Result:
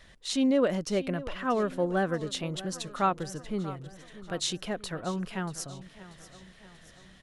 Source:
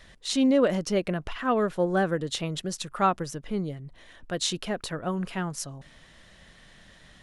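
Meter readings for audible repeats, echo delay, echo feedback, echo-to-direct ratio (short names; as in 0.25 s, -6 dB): 4, 0.636 s, 53%, -15.0 dB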